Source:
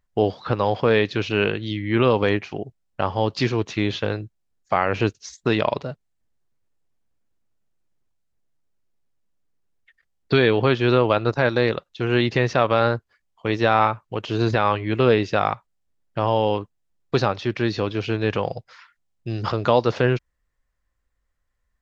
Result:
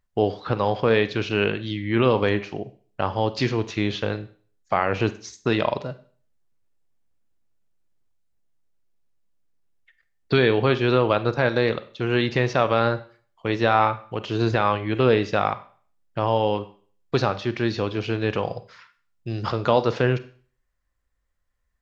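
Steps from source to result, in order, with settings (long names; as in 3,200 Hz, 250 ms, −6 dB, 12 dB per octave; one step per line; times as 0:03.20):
four-comb reverb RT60 0.45 s, combs from 31 ms, DRR 13 dB
level −1.5 dB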